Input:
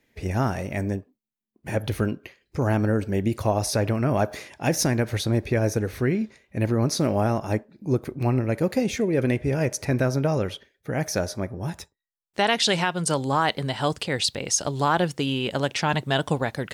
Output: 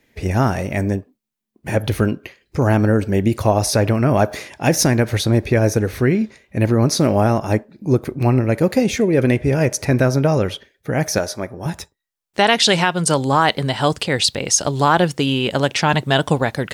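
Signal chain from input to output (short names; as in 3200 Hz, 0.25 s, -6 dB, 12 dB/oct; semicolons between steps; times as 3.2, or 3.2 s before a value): 11.18–11.66 low shelf 260 Hz -10.5 dB; gain +7 dB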